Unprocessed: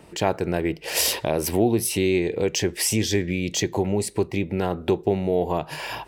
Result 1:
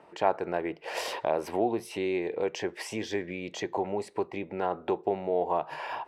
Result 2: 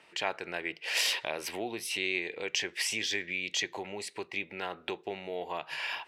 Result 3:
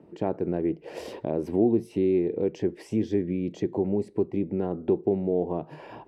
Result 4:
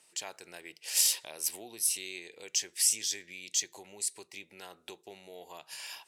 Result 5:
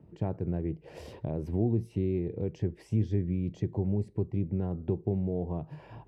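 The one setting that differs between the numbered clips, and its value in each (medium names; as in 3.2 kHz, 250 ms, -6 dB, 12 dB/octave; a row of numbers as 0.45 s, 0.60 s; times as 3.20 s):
band-pass filter, frequency: 910 Hz, 2.4 kHz, 280 Hz, 8 kHz, 110 Hz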